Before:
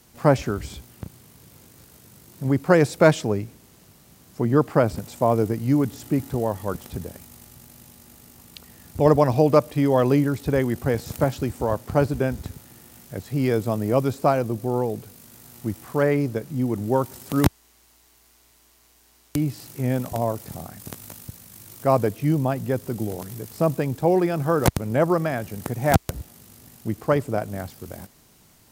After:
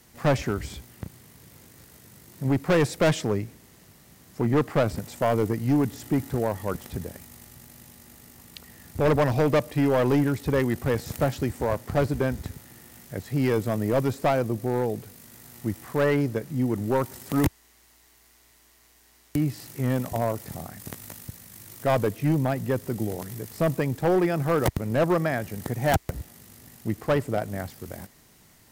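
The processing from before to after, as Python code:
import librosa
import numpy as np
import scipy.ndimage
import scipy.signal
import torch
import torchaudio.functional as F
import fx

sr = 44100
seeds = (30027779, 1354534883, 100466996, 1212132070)

y = fx.peak_eq(x, sr, hz=1900.0, db=6.0, octaves=0.31)
y = np.clip(y, -10.0 ** (-15.5 / 20.0), 10.0 ** (-15.5 / 20.0))
y = y * 10.0 ** (-1.0 / 20.0)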